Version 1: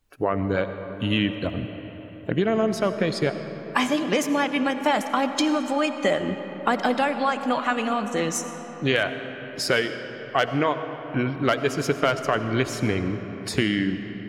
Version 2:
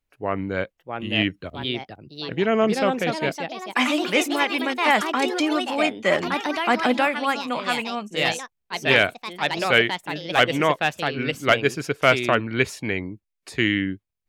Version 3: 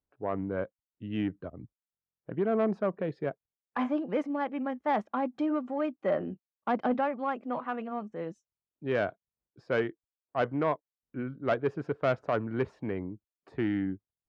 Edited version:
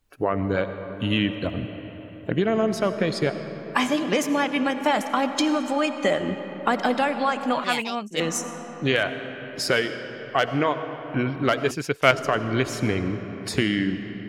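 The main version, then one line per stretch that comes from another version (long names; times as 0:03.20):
1
0:07.64–0:08.20: punch in from 2
0:11.71–0:12.11: punch in from 2
not used: 3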